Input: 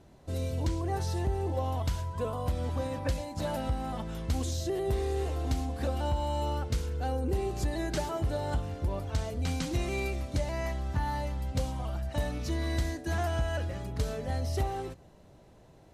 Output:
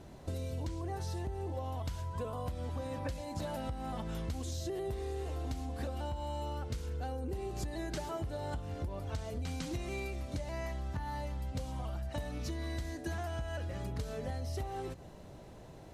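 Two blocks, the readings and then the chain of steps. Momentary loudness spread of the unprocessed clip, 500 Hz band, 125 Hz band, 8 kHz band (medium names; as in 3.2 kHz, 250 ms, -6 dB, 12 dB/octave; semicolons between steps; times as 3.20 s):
3 LU, -6.5 dB, -6.5 dB, -6.5 dB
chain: compression 10:1, threshold -40 dBFS, peak gain reduction 15.5 dB; trim +5 dB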